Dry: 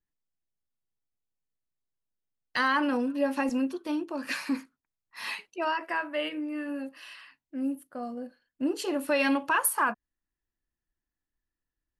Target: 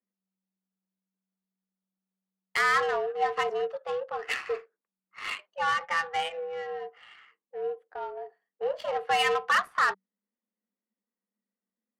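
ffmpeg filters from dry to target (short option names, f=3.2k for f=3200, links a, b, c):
-filter_complex "[0:a]asplit=2[a][b];[b]highpass=f=720:p=1,volume=9dB,asoftclip=type=tanh:threshold=-13.5dB[c];[a][c]amix=inputs=2:normalize=0,lowpass=f=5.2k:p=1,volume=-6dB,afreqshift=190,adynamicsmooth=sensitivity=2.5:basefreq=1.2k"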